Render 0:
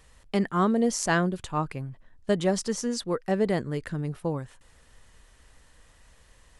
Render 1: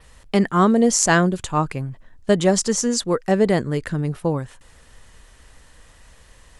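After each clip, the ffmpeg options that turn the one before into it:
-af "adynamicequalizer=threshold=0.00251:dfrequency=7100:dqfactor=2.4:tfrequency=7100:tqfactor=2.4:attack=5:release=100:ratio=0.375:range=3.5:mode=boostabove:tftype=bell,volume=7.5dB"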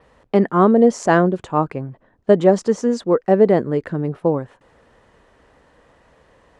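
-af "bandpass=f=470:t=q:w=0.72:csg=0,volume=5.5dB"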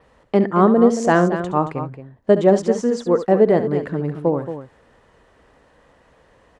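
-af "aecho=1:1:69|225:0.251|0.299,volume=-1dB"

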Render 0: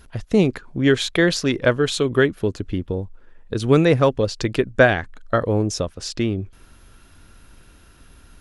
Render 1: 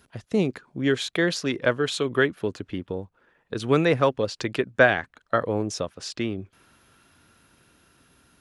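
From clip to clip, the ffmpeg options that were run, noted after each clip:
-filter_complex "[0:a]highpass=120,acrossover=split=640|3700[a][b][c];[b]dynaudnorm=f=340:g=11:m=11.5dB[d];[a][d][c]amix=inputs=3:normalize=0,volume=-6dB"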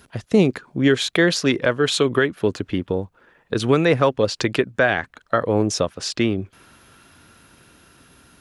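-af "alimiter=limit=-14dB:level=0:latency=1:release=278,volume=8dB"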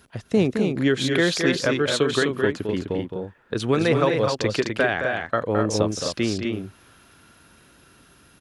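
-af "aecho=1:1:215.7|253.6:0.447|0.562,volume=-4dB"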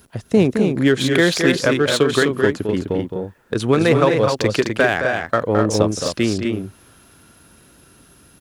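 -filter_complex "[0:a]highshelf=f=7.3k:g=10.5,asplit=2[a][b];[b]adynamicsmooth=sensitivity=2.5:basefreq=1.1k,volume=-2dB[c];[a][c]amix=inputs=2:normalize=0,acrusher=bits=10:mix=0:aa=0.000001"

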